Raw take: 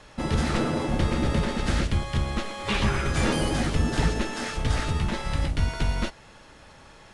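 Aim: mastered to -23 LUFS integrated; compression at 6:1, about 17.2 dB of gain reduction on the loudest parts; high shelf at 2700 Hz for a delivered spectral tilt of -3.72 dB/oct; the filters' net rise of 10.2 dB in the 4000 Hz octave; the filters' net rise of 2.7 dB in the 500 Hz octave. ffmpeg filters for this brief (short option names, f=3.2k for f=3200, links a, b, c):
-af "equalizer=f=500:t=o:g=3,highshelf=f=2.7k:g=6,equalizer=f=4k:t=o:g=8,acompressor=threshold=-37dB:ratio=6,volume=16dB"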